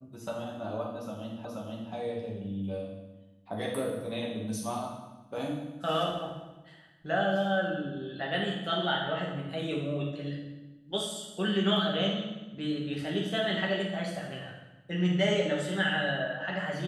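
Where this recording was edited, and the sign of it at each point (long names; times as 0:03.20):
0:01.45: the same again, the last 0.48 s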